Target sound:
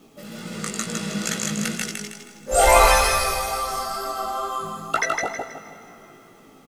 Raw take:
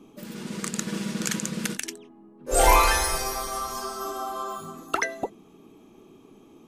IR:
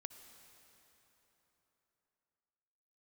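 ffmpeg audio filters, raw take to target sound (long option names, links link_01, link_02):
-filter_complex "[0:a]lowshelf=frequency=180:gain=-4,aecho=1:1:1.5:0.46,aecho=1:1:159|318|477|636|795:0.708|0.262|0.0969|0.0359|0.0133,aresample=32000,aresample=44100,asplit=2[link_01][link_02];[link_02]highshelf=frequency=12000:gain=-11.5[link_03];[1:a]atrim=start_sample=2205[link_04];[link_03][link_04]afir=irnorm=-1:irlink=0,volume=5.5dB[link_05];[link_01][link_05]amix=inputs=2:normalize=0,acrusher=bits=8:mix=0:aa=0.000001,flanger=delay=17:depth=2.3:speed=2.2,volume=-1dB"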